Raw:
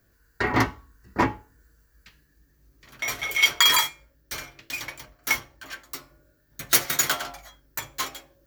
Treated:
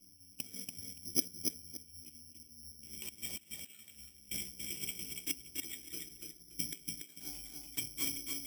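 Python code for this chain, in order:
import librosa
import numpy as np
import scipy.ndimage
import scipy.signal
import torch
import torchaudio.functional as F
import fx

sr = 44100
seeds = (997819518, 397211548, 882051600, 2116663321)

p1 = fx.pitch_glide(x, sr, semitones=11.0, runs='ending unshifted')
p2 = fx.gate_flip(p1, sr, shuts_db=-17.0, range_db=-26)
p3 = fx.formant_cascade(p2, sr, vowel='i')
p4 = p3 + fx.echo_feedback(p3, sr, ms=286, feedback_pct=22, wet_db=-4.0, dry=0)
p5 = (np.kron(scipy.signal.resample_poly(p4, 1, 8), np.eye(8)[0]) * 8)[:len(p4)]
y = F.gain(torch.from_numpy(p5), 7.0).numpy()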